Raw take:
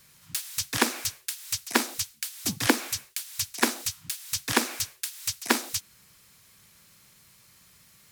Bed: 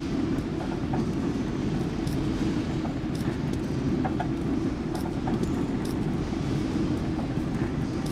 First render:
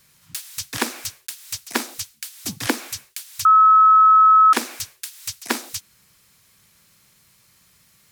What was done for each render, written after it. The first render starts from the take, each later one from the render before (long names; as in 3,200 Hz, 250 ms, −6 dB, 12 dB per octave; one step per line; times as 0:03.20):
0:00.78–0:02.19: one scale factor per block 5 bits
0:03.45–0:04.53: beep over 1,290 Hz −8.5 dBFS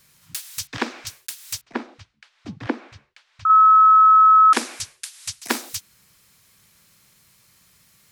0:00.67–0:01.07: high-frequency loss of the air 160 metres
0:01.61–0:03.50: head-to-tape spacing loss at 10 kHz 42 dB
0:04.38–0:05.43: Butterworth low-pass 11,000 Hz 48 dB per octave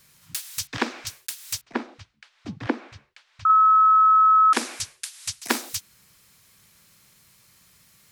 downward compressor, threshold −14 dBFS, peak gain reduction 4 dB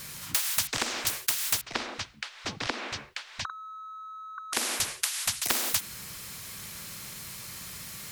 downward compressor 5 to 1, threshold −22 dBFS, peak gain reduction 7.5 dB
every bin compressed towards the loudest bin 4 to 1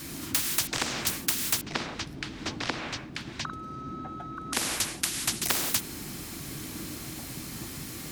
mix in bed −14 dB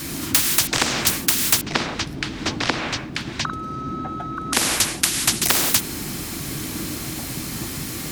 level +9.5 dB
brickwall limiter −2 dBFS, peak gain reduction 2 dB